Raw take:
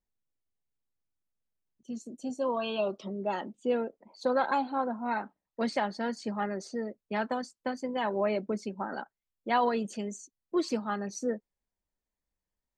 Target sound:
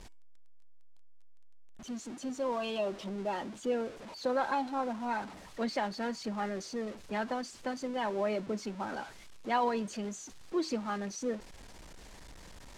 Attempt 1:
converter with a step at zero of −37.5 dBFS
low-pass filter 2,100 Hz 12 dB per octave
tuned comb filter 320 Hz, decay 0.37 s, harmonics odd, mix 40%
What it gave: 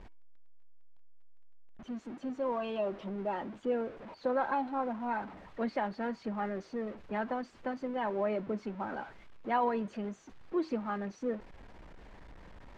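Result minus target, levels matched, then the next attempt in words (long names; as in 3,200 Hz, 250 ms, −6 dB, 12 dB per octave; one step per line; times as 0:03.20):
8,000 Hz band −18.5 dB
converter with a step at zero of −37.5 dBFS
low-pass filter 7,400 Hz 12 dB per octave
tuned comb filter 320 Hz, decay 0.37 s, harmonics odd, mix 40%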